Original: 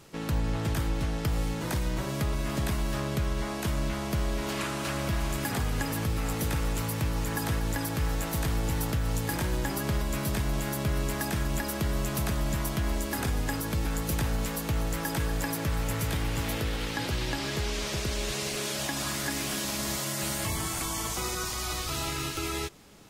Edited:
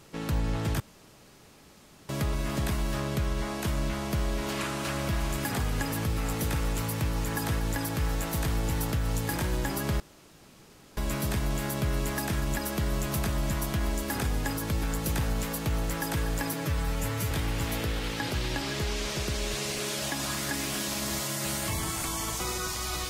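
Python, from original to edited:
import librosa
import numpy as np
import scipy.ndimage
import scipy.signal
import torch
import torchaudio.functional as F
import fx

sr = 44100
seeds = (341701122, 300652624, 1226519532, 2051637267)

y = fx.edit(x, sr, fx.room_tone_fill(start_s=0.8, length_s=1.29),
    fx.insert_room_tone(at_s=10.0, length_s=0.97),
    fx.stretch_span(start_s=15.56, length_s=0.52, factor=1.5), tone=tone)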